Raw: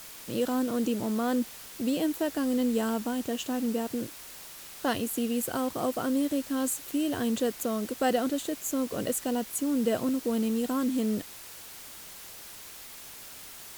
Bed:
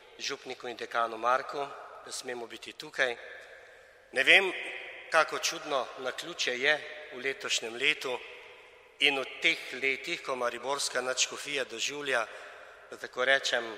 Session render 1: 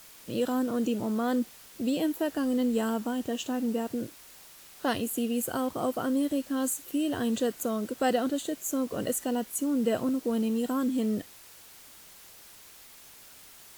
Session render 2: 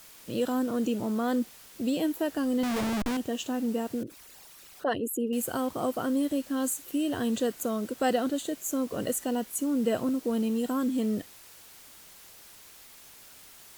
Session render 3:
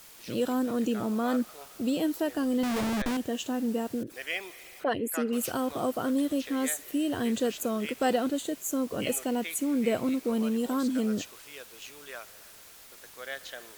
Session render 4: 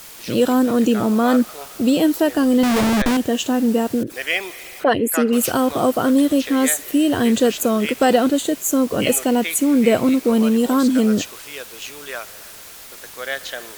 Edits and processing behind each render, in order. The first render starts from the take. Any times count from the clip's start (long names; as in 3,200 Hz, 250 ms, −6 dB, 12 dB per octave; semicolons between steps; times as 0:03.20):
noise reduction from a noise print 6 dB
0:02.63–0:03.17: comparator with hysteresis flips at −32 dBFS; 0:04.03–0:05.33: spectral envelope exaggerated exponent 2
mix in bed −13.5 dB
level +12 dB; brickwall limiter −3 dBFS, peak gain reduction 2 dB